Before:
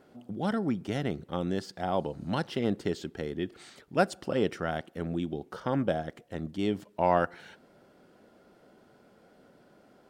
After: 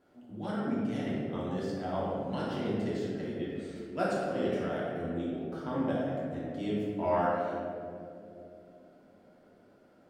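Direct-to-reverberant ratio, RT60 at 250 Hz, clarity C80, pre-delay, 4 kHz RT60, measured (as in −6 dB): −8.0 dB, 3.6 s, −0.5 dB, 3 ms, 1.1 s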